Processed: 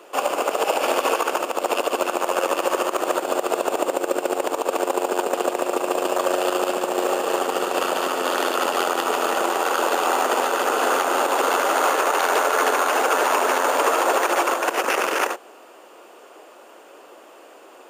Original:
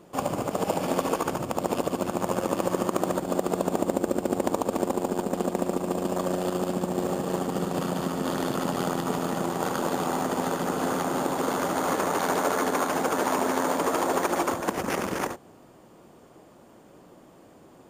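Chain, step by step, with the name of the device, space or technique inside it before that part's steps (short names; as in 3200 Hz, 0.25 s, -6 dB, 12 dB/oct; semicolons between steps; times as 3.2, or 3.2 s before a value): laptop speaker (HPF 390 Hz 24 dB/oct; bell 1400 Hz +4.5 dB 0.48 oct; bell 2700 Hz +8.5 dB 0.32 oct; limiter -17 dBFS, peak gain reduction 9 dB); gain +8.5 dB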